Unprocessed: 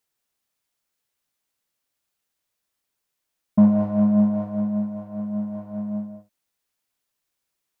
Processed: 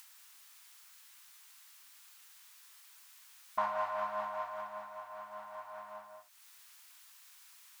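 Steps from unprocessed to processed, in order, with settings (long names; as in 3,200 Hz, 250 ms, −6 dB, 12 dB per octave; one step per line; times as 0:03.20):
inverse Chebyshev high-pass filter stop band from 470 Hz, stop band 40 dB
upward compression, threshold −53 dBFS
level +8 dB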